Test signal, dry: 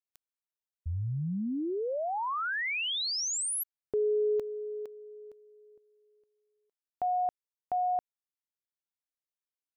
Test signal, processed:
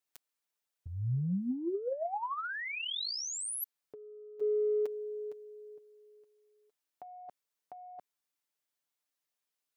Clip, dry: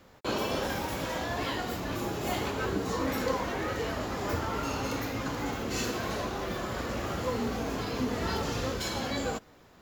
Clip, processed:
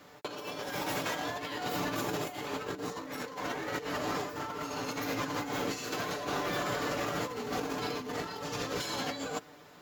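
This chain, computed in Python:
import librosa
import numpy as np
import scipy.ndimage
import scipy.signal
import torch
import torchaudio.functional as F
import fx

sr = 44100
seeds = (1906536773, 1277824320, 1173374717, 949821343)

y = fx.highpass(x, sr, hz=240.0, slope=6)
y = y + 0.62 * np.pad(y, (int(6.8 * sr / 1000.0), 0))[:len(y)]
y = fx.over_compress(y, sr, threshold_db=-35.0, ratio=-0.5)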